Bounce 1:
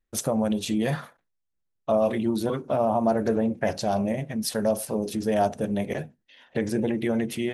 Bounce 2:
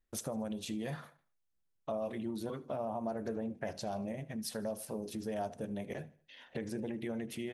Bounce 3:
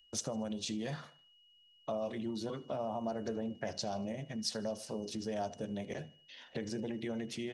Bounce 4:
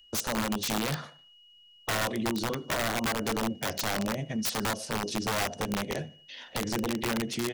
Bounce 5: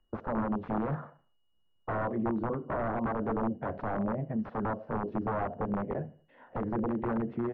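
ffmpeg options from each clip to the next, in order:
-af "acompressor=threshold=-43dB:ratio=2,aecho=1:1:77|154|231:0.0794|0.035|0.0154,volume=-2dB"
-filter_complex "[0:a]lowpass=f=5.8k:w=0.5412,lowpass=f=5.8k:w=1.3066,aeval=exprs='val(0)+0.000562*sin(2*PI*2900*n/s)':c=same,acrossover=split=130|3500[a][b][c];[c]crystalizer=i=4:c=0[d];[a][b][d]amix=inputs=3:normalize=0"
-af "aeval=exprs='(mod(37.6*val(0)+1,2)-1)/37.6':c=same,volume=8.5dB"
-af "lowpass=f=1.3k:w=0.5412,lowpass=f=1.3k:w=1.3066"

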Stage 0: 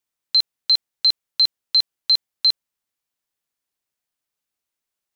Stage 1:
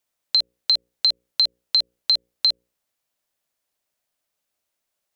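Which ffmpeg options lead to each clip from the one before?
-af "equalizer=f=610:t=o:w=0.45:g=7.5,bandreject=f=60:t=h:w=6,bandreject=f=120:t=h:w=6,bandreject=f=180:t=h:w=6,bandreject=f=240:t=h:w=6,bandreject=f=300:t=h:w=6,bandreject=f=360:t=h:w=6,bandreject=f=420:t=h:w=6,bandreject=f=480:t=h:w=6,bandreject=f=540:t=h:w=6,acompressor=threshold=-21dB:ratio=4,volume=4dB"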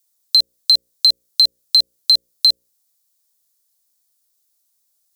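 -af "aexciter=amount=4.1:drive=7.2:freq=3.8k,volume=-4dB"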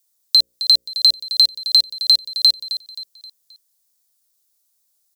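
-af "aecho=1:1:264|528|792|1056:0.237|0.0996|0.0418|0.0176"

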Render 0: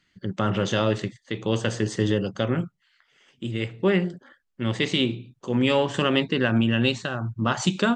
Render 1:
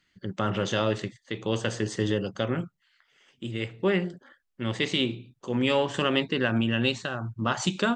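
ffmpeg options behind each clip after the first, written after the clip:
-af "equalizer=f=150:w=0.62:g=-3,volume=-2dB"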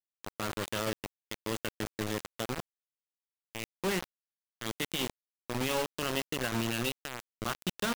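-af "acrusher=bits=3:mix=0:aa=0.000001,volume=-8.5dB"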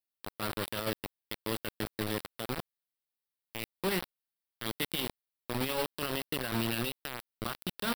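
-af "alimiter=limit=-24dB:level=0:latency=1:release=32,aexciter=amount=1:drive=1.7:freq=3.6k"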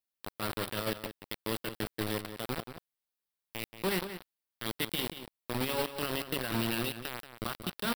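-filter_complex "[0:a]asplit=2[a][b];[b]adelay=180.8,volume=-10dB,highshelf=f=4k:g=-4.07[c];[a][c]amix=inputs=2:normalize=0"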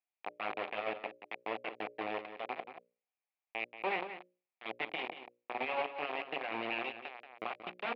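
-af "aeval=exprs='(tanh(22.4*val(0)+0.7)-tanh(0.7))/22.4':c=same,highpass=430,equalizer=f=750:t=q:w=4:g=9,equalizer=f=1.5k:t=q:w=4:g=-6,equalizer=f=2.4k:t=q:w=4:g=9,lowpass=f=2.6k:w=0.5412,lowpass=f=2.6k:w=1.3066,bandreject=f=60:t=h:w=6,bandreject=f=120:t=h:w=6,bandreject=f=180:t=h:w=6,bandreject=f=240:t=h:w=6,bandreject=f=300:t=h:w=6,bandreject=f=360:t=h:w=6,bandreject=f=420:t=h:w=6,bandreject=f=480:t=h:w=6,bandreject=f=540:t=h:w=6,bandreject=f=600:t=h:w=6,volume=2dB"

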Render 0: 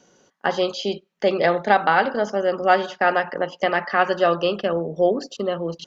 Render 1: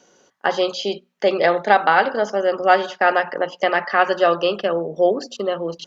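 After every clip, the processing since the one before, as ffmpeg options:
-af "bass=f=250:g=-7,treble=f=4k:g=0,bandreject=f=60:t=h:w=6,bandreject=f=120:t=h:w=6,bandreject=f=180:t=h:w=6,bandreject=f=240:t=h:w=6,volume=2.5dB"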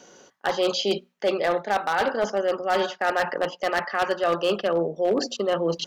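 -af "areverse,acompressor=threshold=-25dB:ratio=6,areverse,aeval=exprs='0.106*(abs(mod(val(0)/0.106+3,4)-2)-1)':c=same,volume=5dB"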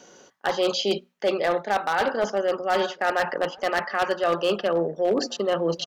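-filter_complex "[0:a]asplit=2[a][b];[b]adelay=1574,volume=-23dB,highshelf=f=4k:g=-35.4[c];[a][c]amix=inputs=2:normalize=0"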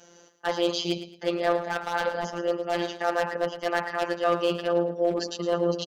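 -af "aecho=1:1:110|220|330:0.251|0.0728|0.0211,afftfilt=real='hypot(re,im)*cos(PI*b)':imag='0':win_size=1024:overlap=0.75"

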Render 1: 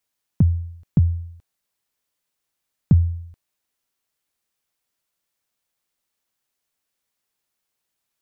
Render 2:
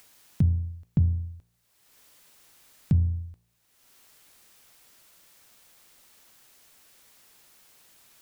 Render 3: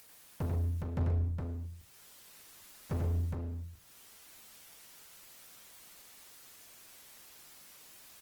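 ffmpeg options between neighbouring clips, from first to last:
-af "bandreject=f=57.73:t=h:w=4,bandreject=f=115.46:t=h:w=4,bandreject=f=173.19:t=h:w=4,bandreject=f=230.92:t=h:w=4,bandreject=f=288.65:t=h:w=4,bandreject=f=346.38:t=h:w=4,bandreject=f=404.11:t=h:w=4,bandreject=f=461.84:t=h:w=4,bandreject=f=519.57:t=h:w=4,bandreject=f=577.3:t=h:w=4,bandreject=f=635.03:t=h:w=4,bandreject=f=692.76:t=h:w=4,bandreject=f=750.49:t=h:w=4,bandreject=f=808.22:t=h:w=4,bandreject=f=865.95:t=h:w=4,bandreject=f=923.68:t=h:w=4,bandreject=f=981.41:t=h:w=4,bandreject=f=1.03914k:t=h:w=4,bandreject=f=1.09687k:t=h:w=4,bandreject=f=1.1546k:t=h:w=4,alimiter=limit=-14dB:level=0:latency=1:release=225,acompressor=mode=upward:threshold=-39dB:ratio=2.5"
-af "volume=31.5dB,asoftclip=hard,volume=-31.5dB,aecho=1:1:41|92|130|414|454:0.299|0.596|0.299|0.596|0.126" -ar 48000 -c:a libopus -b:a 20k

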